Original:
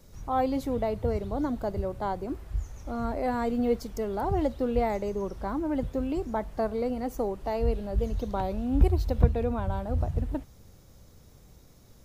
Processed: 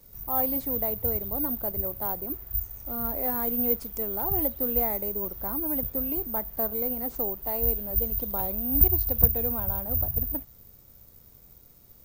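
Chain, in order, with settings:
bad sample-rate conversion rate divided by 3×, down none, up zero stuff
level −4.5 dB

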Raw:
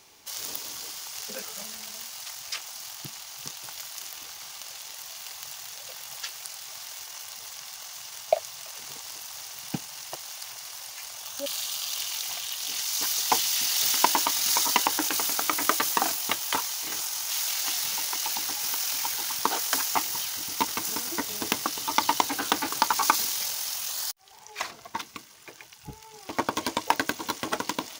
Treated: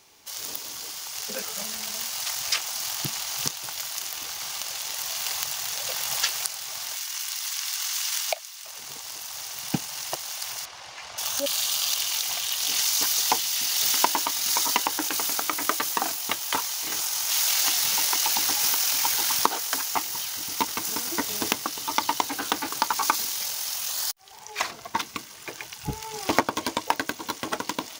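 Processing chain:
camcorder AGC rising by 5.1 dB per second
0:06.96–0:08.65: high-pass filter 1,300 Hz 12 dB per octave
0:10.65–0:11.18: head-to-tape spacing loss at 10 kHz 22 dB
level −1.5 dB

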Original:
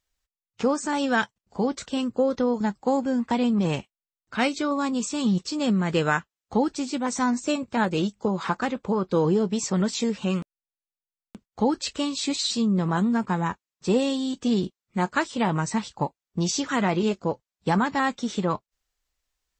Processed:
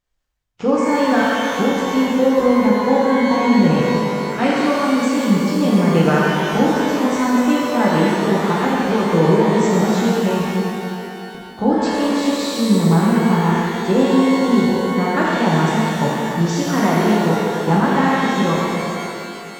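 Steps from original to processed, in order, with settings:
high-shelf EQ 2,200 Hz −10.5 dB
reverb with rising layers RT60 2.6 s, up +12 semitones, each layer −8 dB, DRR −6 dB
level +2.5 dB

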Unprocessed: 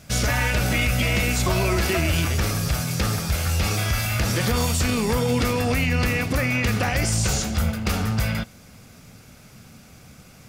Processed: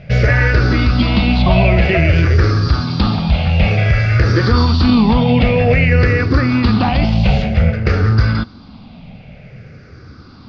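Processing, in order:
rippled gain that drifts along the octave scale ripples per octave 0.5, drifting −0.53 Hz, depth 13 dB
elliptic low-pass filter 4,700 Hz, stop band 50 dB
tilt shelving filter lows +3.5 dB, about 720 Hz
level +7 dB

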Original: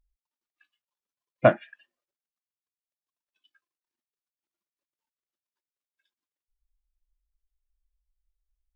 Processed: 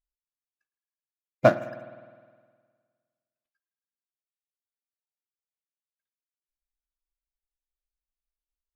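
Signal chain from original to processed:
running median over 15 samples
noise gate −55 dBFS, range −16 dB
spring reverb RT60 1.7 s, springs 51 ms, chirp 45 ms, DRR 14 dB

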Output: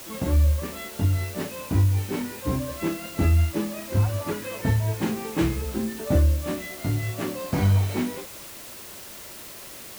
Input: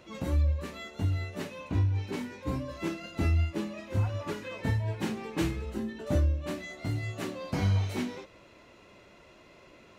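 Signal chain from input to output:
high-shelf EQ 2,700 Hz −7 dB
bit-depth reduction 8 bits, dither triangular
level +6.5 dB

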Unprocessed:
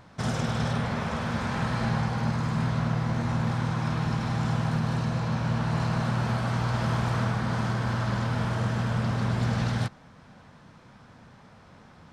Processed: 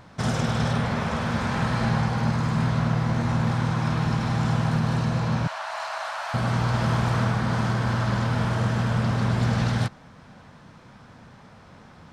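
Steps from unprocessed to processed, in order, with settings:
0:05.47–0:06.34: elliptic high-pass filter 620 Hz, stop band 40 dB
level +3.5 dB

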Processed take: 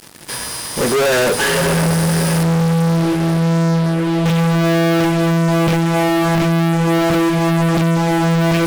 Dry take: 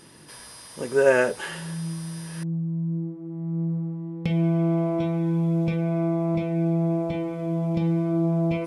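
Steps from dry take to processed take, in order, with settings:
feedback delay with all-pass diffusion 580 ms, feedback 49%, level −14 dB
fuzz pedal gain 43 dB, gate −46 dBFS
expander for the loud parts 1.5 to 1, over −28 dBFS

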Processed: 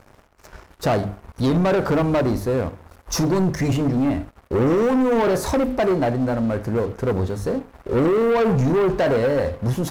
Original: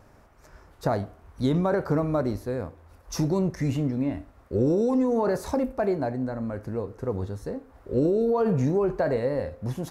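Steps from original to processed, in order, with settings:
mains-hum notches 50/100/150/200/250/300 Hz
leveller curve on the samples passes 3

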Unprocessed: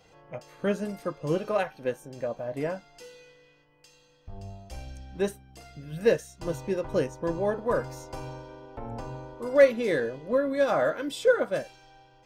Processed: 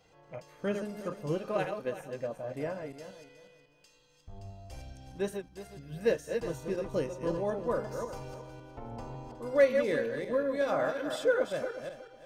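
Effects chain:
feedback delay that plays each chunk backwards 183 ms, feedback 45%, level −6 dB
0:06.86–0:09.32: notch filter 1,600 Hz, Q 9.7
level −5.5 dB

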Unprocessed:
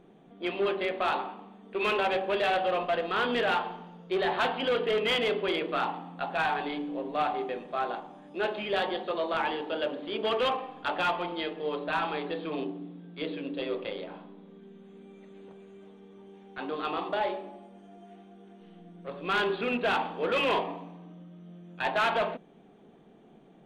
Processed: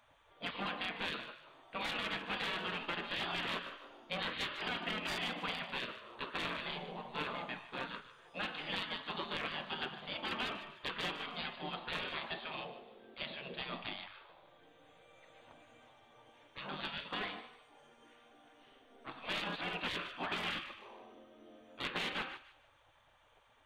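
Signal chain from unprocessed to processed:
gate on every frequency bin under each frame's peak −15 dB weak
downward compressor, threshold −36 dBFS, peak gain reduction 6 dB
feedback echo with a high-pass in the loop 150 ms, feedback 32%, high-pass 1,100 Hz, level −13.5 dB
level +1.5 dB

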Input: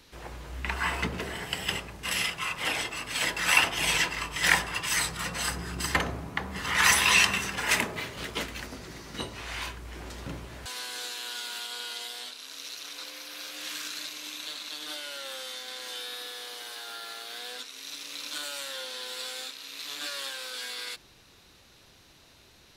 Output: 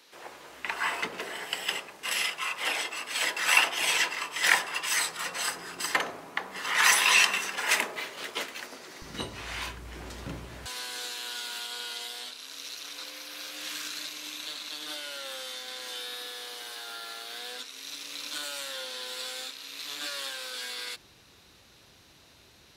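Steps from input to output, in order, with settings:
high-pass filter 400 Hz 12 dB per octave, from 0:09.02 49 Hz

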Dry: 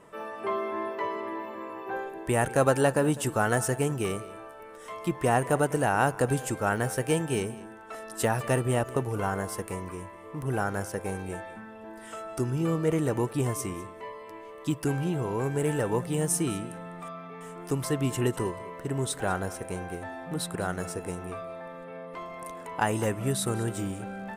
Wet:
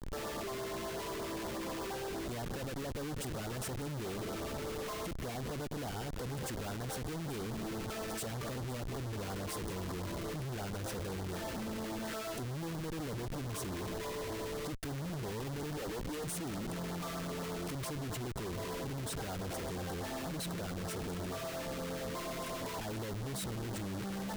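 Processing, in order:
0:15.77–0:16.24: high-pass filter 250 Hz 24 dB per octave
downward compressor 20 to 1, threshold −35 dBFS, peak gain reduction 19 dB
comparator with hysteresis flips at −45.5 dBFS
auto-filter notch sine 8.4 Hz 680–2,700 Hz
level +1.5 dB

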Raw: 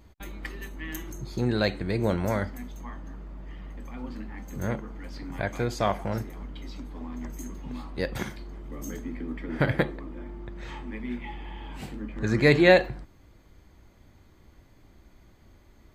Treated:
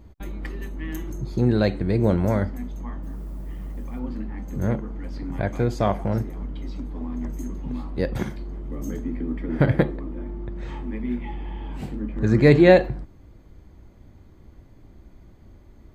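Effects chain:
0:03.02–0:03.98: background noise blue −60 dBFS
tilt shelving filter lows +5.5 dB, about 810 Hz
level +2 dB

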